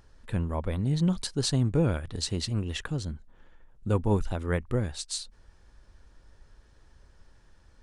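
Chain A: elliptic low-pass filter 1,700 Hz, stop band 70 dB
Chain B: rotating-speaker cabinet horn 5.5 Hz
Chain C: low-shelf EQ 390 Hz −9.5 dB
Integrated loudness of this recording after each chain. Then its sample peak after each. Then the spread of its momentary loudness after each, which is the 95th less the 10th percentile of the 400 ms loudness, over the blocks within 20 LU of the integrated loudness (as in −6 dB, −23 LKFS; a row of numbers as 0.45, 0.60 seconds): −30.5, −31.5, −34.5 LKFS; −15.0, −14.5, −16.0 dBFS; 9, 11, 10 LU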